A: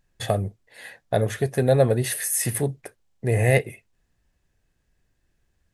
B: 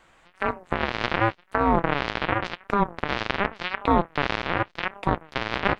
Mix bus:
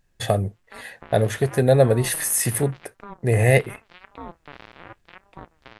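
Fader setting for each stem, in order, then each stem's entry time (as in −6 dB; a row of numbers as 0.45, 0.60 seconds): +2.5, −18.0 decibels; 0.00, 0.30 seconds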